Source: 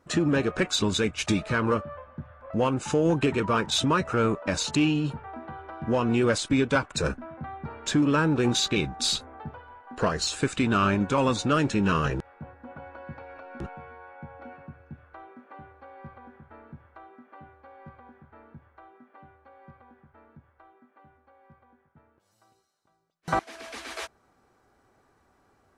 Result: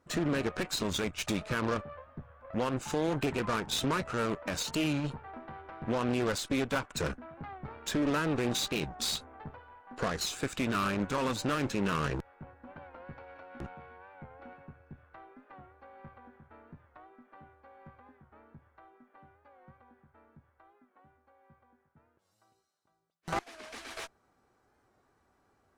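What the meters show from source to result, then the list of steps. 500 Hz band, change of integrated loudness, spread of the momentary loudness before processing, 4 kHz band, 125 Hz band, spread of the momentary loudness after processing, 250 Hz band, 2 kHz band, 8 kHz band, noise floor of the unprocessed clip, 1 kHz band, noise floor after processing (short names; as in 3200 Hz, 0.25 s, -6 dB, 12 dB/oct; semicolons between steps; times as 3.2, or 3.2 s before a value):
-7.0 dB, -7.0 dB, 20 LU, -6.5 dB, -8.0 dB, 19 LU, -7.5 dB, -6.0 dB, -5.5 dB, -67 dBFS, -6.5 dB, -73 dBFS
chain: limiter -17.5 dBFS, peak gain reduction 4 dB; added harmonics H 2 -9 dB, 8 -18 dB, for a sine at -17.5 dBFS; record warp 45 rpm, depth 100 cents; gain -6 dB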